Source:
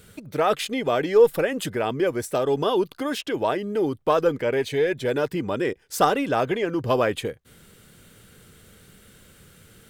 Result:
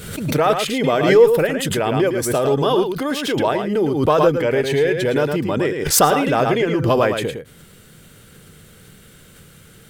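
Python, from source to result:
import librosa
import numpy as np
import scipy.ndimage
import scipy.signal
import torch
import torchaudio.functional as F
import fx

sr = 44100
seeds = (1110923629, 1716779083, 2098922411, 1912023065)

p1 = fx.peak_eq(x, sr, hz=150.0, db=6.0, octaves=0.24)
p2 = p1 + fx.echo_single(p1, sr, ms=109, db=-7.0, dry=0)
p3 = fx.pre_swell(p2, sr, db_per_s=54.0)
y = p3 * 10.0 ** (4.0 / 20.0)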